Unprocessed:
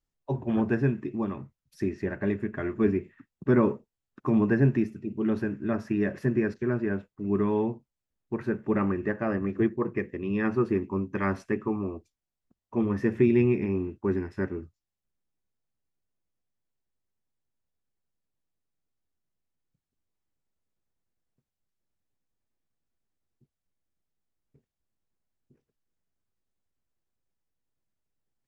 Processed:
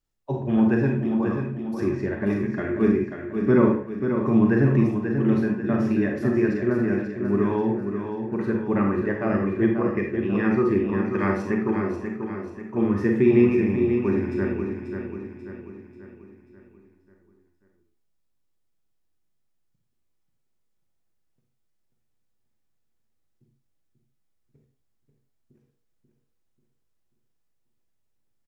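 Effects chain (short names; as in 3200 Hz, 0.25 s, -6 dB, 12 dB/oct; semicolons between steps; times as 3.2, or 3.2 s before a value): feedback echo 0.538 s, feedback 48%, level -7 dB; on a send at -2.5 dB: reverb RT60 0.40 s, pre-delay 34 ms; on the sum: gain +1.5 dB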